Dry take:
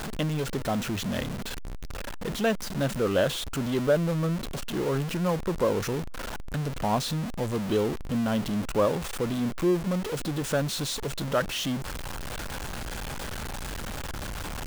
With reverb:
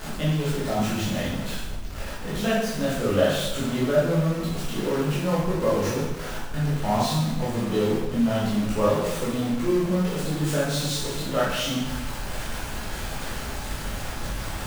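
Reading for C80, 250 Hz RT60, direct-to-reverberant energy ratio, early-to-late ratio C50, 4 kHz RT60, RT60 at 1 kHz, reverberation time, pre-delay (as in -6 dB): 3.5 dB, 0.90 s, -9.0 dB, 0.0 dB, 0.90 s, 0.95 s, 1.0 s, 7 ms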